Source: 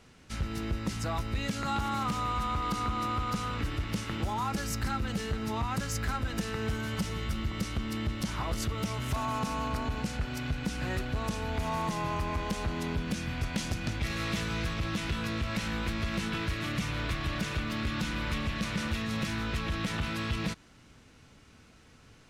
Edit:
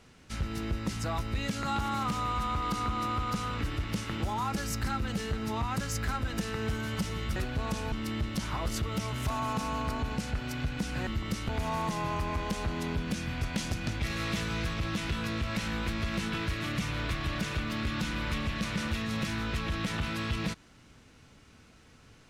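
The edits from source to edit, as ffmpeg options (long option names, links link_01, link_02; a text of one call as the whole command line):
ffmpeg -i in.wav -filter_complex "[0:a]asplit=5[link_01][link_02][link_03][link_04][link_05];[link_01]atrim=end=7.362[link_06];[link_02]atrim=start=10.928:end=11.492[link_07];[link_03]atrim=start=7.778:end=10.932[link_08];[link_04]atrim=start=7.358:end=7.782[link_09];[link_05]atrim=start=11.488[link_10];[link_06][link_07]acrossfade=duration=0.004:curve1=hsin:curve2=hsin[link_11];[link_11][link_08]acrossfade=duration=0.004:curve1=hsin:curve2=hsin[link_12];[link_12][link_09]acrossfade=duration=0.004:curve1=hsin:curve2=hsin[link_13];[link_13][link_10]acrossfade=duration=0.004:curve1=hsin:curve2=hsin" out.wav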